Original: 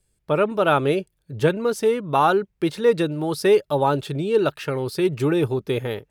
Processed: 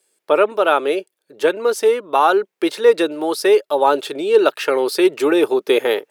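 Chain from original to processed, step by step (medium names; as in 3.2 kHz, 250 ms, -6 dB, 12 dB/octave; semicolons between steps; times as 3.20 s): high-pass 340 Hz 24 dB/octave; gain riding 0.5 s; trim +6 dB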